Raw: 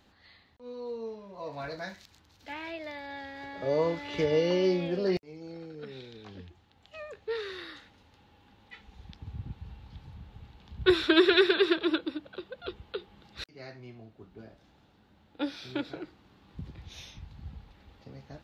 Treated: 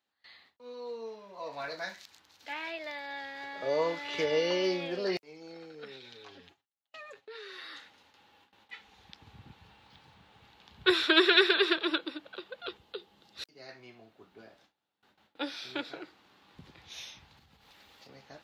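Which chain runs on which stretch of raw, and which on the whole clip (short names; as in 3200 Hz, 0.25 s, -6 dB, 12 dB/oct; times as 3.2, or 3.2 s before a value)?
5.96–7.73 expander -51 dBFS + comb 7.3 ms, depth 77% + compressor 3:1, threshold -45 dBFS
9.67–10.42 low shelf 60 Hz -9 dB + decimation joined by straight lines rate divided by 2×
12.77–13.69 bell 1600 Hz -8 dB 2.3 oct + notch 2300 Hz, Q 19
17.37–18.09 high shelf 3800 Hz +10 dB + compressor 5:1, threshold -47 dBFS + mismatched tape noise reduction decoder only
whole clip: gate with hold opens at -50 dBFS; HPF 840 Hz 6 dB/oct; gain +3.5 dB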